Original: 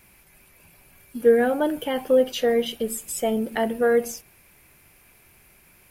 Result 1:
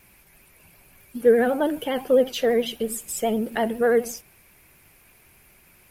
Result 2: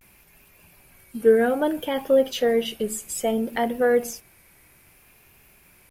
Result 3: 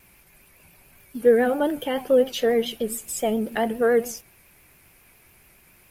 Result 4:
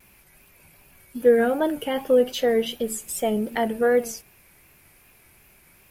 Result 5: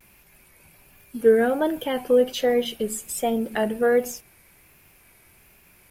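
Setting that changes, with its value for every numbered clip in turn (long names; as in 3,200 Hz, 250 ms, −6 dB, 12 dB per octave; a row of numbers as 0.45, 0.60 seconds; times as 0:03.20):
pitch vibrato, speed: 12, 0.61, 7.2, 2.6, 1.3 Hertz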